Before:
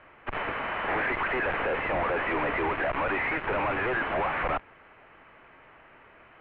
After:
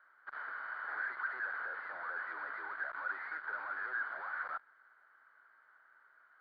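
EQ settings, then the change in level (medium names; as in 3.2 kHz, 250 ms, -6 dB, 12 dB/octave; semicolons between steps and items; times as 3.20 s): two resonant band-passes 2.6 kHz, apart 1.6 oct; -2.0 dB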